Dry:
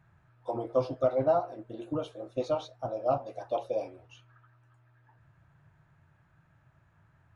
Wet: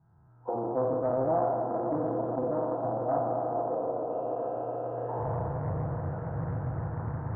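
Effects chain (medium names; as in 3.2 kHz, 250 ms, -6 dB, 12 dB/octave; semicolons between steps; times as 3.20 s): spectral sustain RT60 2.58 s; recorder AGC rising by 21 dB/s; low-pass 1.1 kHz 24 dB/octave; comb of notches 580 Hz; echo with a slow build-up 145 ms, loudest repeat 5, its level -15 dB; loudspeaker Doppler distortion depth 0.41 ms; trim -3 dB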